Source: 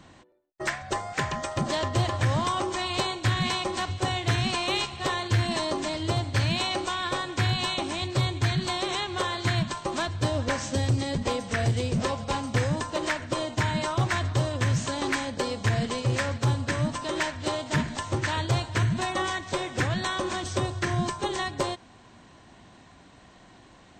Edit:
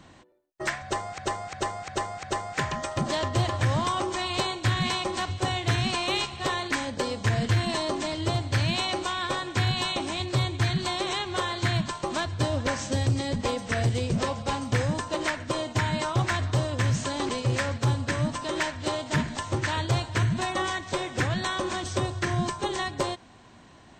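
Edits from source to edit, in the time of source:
0.83–1.18 loop, 5 plays
15.11–15.89 move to 5.31

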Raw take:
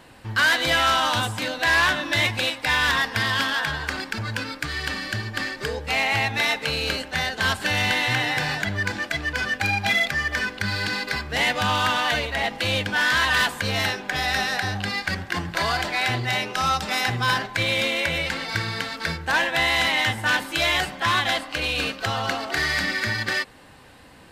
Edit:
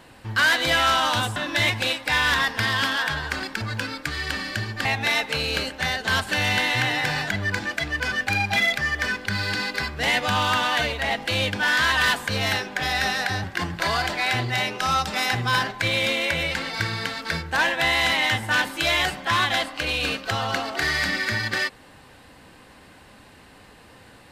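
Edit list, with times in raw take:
1.36–1.93 cut
5.42–6.18 cut
14.77–15.19 cut

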